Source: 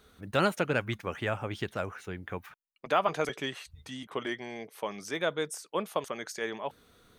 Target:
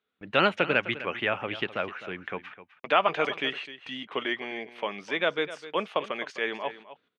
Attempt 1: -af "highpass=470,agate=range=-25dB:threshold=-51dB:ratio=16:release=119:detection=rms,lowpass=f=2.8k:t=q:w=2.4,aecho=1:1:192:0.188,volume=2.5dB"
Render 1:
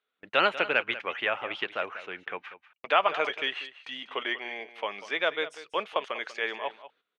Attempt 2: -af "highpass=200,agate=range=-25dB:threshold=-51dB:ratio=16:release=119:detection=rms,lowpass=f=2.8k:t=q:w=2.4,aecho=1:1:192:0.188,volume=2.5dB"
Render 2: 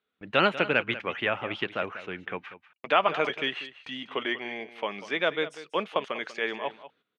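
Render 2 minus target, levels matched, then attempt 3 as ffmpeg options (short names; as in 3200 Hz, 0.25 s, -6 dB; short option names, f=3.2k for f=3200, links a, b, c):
echo 64 ms early
-af "highpass=200,agate=range=-25dB:threshold=-51dB:ratio=16:release=119:detection=rms,lowpass=f=2.8k:t=q:w=2.4,aecho=1:1:256:0.188,volume=2.5dB"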